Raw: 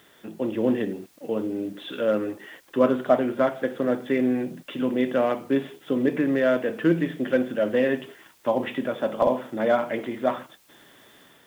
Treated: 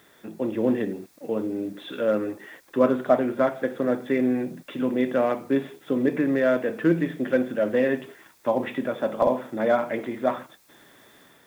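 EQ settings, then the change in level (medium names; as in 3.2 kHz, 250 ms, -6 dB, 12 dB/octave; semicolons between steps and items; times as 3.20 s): peaking EQ 3 kHz -8 dB 0.24 oct; 0.0 dB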